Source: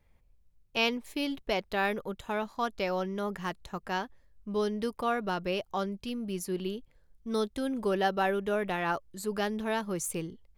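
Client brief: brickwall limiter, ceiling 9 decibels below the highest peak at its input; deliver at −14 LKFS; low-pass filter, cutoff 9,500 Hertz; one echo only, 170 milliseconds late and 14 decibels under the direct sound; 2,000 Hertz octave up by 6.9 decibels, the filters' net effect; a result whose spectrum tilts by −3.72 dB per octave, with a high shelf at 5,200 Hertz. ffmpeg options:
ffmpeg -i in.wav -af "lowpass=9500,equalizer=frequency=2000:width_type=o:gain=8,highshelf=frequency=5200:gain=6,alimiter=limit=-19dB:level=0:latency=1,aecho=1:1:170:0.2,volume=17.5dB" out.wav

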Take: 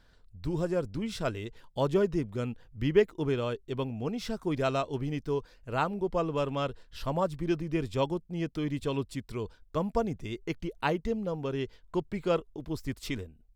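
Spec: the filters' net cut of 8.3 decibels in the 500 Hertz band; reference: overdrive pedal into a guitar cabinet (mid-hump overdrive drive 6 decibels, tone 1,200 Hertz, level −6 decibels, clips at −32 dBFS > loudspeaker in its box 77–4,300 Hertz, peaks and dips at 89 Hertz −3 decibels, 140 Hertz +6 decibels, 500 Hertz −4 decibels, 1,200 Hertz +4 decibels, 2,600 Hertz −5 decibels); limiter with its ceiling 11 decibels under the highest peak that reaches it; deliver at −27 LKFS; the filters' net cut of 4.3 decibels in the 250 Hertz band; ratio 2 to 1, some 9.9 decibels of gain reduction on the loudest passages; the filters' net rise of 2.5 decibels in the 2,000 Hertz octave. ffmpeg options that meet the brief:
ffmpeg -i in.wav -filter_complex "[0:a]equalizer=frequency=250:width_type=o:gain=-5,equalizer=frequency=500:width_type=o:gain=-7.5,equalizer=frequency=2000:width_type=o:gain=5,acompressor=threshold=-42dB:ratio=2,alimiter=level_in=8dB:limit=-24dB:level=0:latency=1,volume=-8dB,asplit=2[link_01][link_02];[link_02]highpass=frequency=720:poles=1,volume=6dB,asoftclip=type=tanh:threshold=-32dB[link_03];[link_01][link_03]amix=inputs=2:normalize=0,lowpass=frequency=1200:poles=1,volume=-6dB,highpass=77,equalizer=frequency=89:width_type=q:width=4:gain=-3,equalizer=frequency=140:width_type=q:width=4:gain=6,equalizer=frequency=500:width_type=q:width=4:gain=-4,equalizer=frequency=1200:width_type=q:width=4:gain=4,equalizer=frequency=2600:width_type=q:width=4:gain=-5,lowpass=frequency=4300:width=0.5412,lowpass=frequency=4300:width=1.3066,volume=20dB" out.wav

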